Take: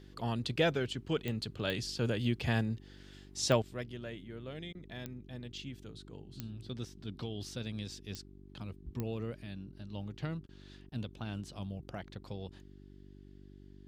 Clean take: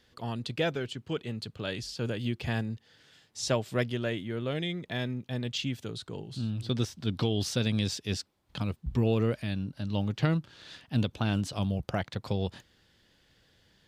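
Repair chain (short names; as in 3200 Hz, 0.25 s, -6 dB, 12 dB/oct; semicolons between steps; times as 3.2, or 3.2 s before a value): de-click; de-hum 48.6 Hz, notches 8; interpolate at 4.73/10.47/10.9, 18 ms; gain 0 dB, from 3.62 s +12 dB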